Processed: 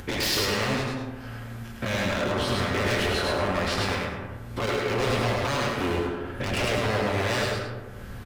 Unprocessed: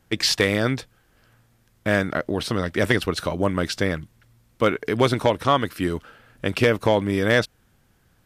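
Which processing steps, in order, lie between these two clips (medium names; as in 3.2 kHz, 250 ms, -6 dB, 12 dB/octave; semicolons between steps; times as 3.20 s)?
every event in the spectrogram widened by 60 ms; tone controls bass +2 dB, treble -7 dB; peak limiter -8.5 dBFS, peak gain reduction 6 dB; upward compressor, threshold -22 dBFS; wavefolder -18.5 dBFS; 4.66–5.93 s: expander -23 dBFS; comb of notches 160 Hz; delay 104 ms -3 dB; on a send at -3 dB: reverberation RT60 1.4 s, pre-delay 45 ms; on the sum: trim -2.5 dB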